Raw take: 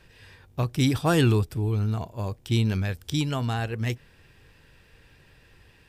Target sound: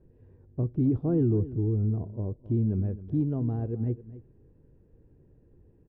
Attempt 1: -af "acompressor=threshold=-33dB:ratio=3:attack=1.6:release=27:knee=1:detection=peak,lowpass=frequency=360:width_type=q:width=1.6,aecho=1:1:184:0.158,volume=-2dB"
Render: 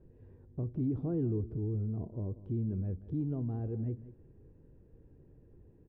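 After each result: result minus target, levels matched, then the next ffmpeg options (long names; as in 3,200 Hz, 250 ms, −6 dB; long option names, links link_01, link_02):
downward compressor: peak gain reduction +8 dB; echo 79 ms early
-af "acompressor=threshold=-21dB:ratio=3:attack=1.6:release=27:knee=1:detection=peak,lowpass=frequency=360:width_type=q:width=1.6,aecho=1:1:184:0.158,volume=-2dB"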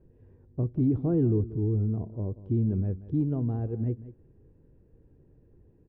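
echo 79 ms early
-af "acompressor=threshold=-21dB:ratio=3:attack=1.6:release=27:knee=1:detection=peak,lowpass=frequency=360:width_type=q:width=1.6,aecho=1:1:263:0.158,volume=-2dB"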